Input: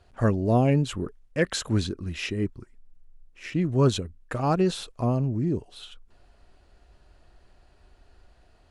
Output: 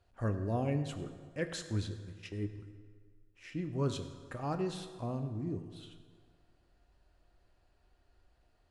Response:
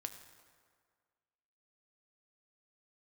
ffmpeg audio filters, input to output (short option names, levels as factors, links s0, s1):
-filter_complex "[0:a]asplit=3[s0][s1][s2];[s0]afade=t=out:st=1.58:d=0.02[s3];[s1]agate=range=0.1:threshold=0.0316:ratio=16:detection=peak,afade=t=in:st=1.58:d=0.02,afade=t=out:st=2.39:d=0.02[s4];[s2]afade=t=in:st=2.39:d=0.02[s5];[s3][s4][s5]amix=inputs=3:normalize=0[s6];[1:a]atrim=start_sample=2205[s7];[s6][s7]afir=irnorm=-1:irlink=0,volume=0.355"